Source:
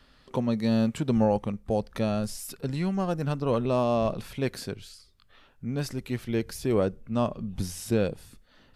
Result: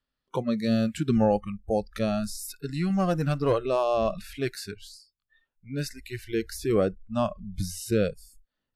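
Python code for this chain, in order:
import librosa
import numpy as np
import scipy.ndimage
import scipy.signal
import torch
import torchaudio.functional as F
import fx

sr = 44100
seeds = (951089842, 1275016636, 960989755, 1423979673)

y = fx.noise_reduce_blind(x, sr, reduce_db=28)
y = fx.leveller(y, sr, passes=1, at=(2.9, 3.53))
y = F.gain(torch.from_numpy(y), 1.5).numpy()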